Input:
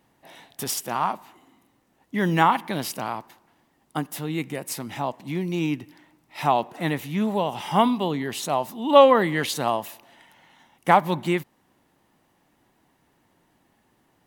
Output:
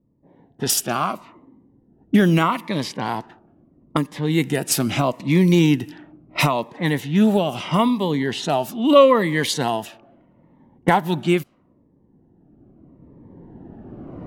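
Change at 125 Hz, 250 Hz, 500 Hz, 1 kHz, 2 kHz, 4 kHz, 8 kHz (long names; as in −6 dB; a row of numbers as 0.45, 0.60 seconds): +8.5, +7.5, +3.0, −0.5, +3.5, +5.5, +7.0 decibels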